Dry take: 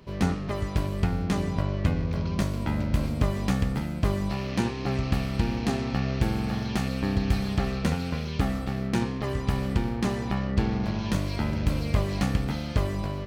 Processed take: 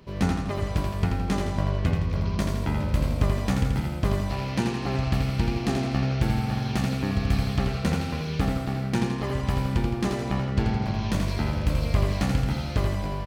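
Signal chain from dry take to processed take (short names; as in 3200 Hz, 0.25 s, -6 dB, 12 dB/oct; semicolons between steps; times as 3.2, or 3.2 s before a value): feedback echo 83 ms, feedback 50%, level -5 dB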